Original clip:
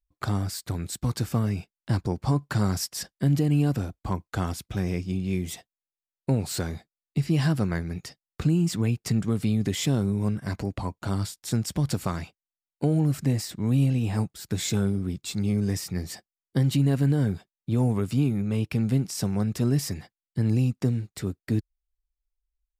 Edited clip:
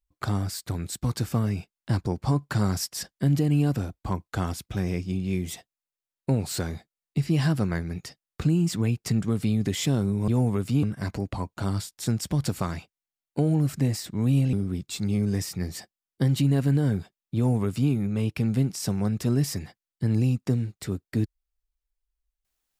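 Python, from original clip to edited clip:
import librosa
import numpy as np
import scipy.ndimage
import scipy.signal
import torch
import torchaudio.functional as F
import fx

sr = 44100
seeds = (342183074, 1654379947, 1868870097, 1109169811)

y = fx.edit(x, sr, fx.cut(start_s=13.98, length_s=0.9),
    fx.duplicate(start_s=17.71, length_s=0.55, to_s=10.28), tone=tone)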